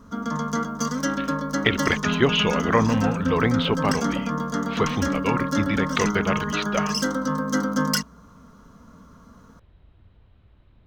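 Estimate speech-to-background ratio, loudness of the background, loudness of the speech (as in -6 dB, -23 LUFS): 1.0 dB, -25.5 LUFS, -24.5 LUFS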